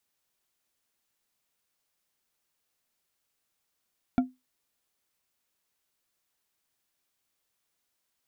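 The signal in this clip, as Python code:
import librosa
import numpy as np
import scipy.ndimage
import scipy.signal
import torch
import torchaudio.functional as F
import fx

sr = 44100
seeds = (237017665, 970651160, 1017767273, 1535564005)

y = fx.strike_glass(sr, length_s=0.89, level_db=-16.0, body='bar', hz=255.0, decay_s=0.21, tilt_db=8, modes=5)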